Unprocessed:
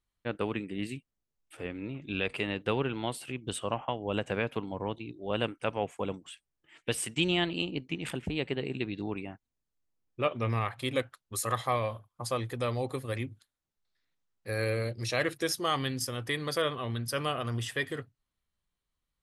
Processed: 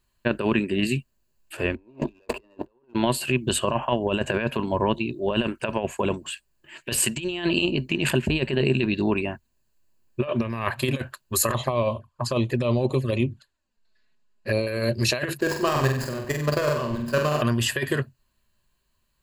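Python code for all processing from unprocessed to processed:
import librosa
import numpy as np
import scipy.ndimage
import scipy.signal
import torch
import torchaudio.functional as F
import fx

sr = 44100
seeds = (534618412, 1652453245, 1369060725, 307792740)

y = fx.chain(x, sr, fx.leveller(passes=3),
    fx.band_shelf(hz=520.0, db=12.5, octaves=2.5), at=(1.76, 2.94))
y = fx.chain(y, sr, fx.env_flanger(rest_ms=4.8, full_db=-30.5),
    fx.air_absorb(metres=60.0), at=(11.53, 14.67))
y = fx.chain(y, sr, fx.median_filter(points=15),
    fx.level_steps(step_db=11),
    fx.room_flutter(wall_m=8.0, rt60_s=0.57), at=(15.4, 17.42))
y = fx.over_compress(y, sr, threshold_db=-33.0, ratio=-0.5)
y = fx.ripple_eq(y, sr, per_octave=1.4, db=9)
y = F.gain(torch.from_numpy(y), 6.0).numpy()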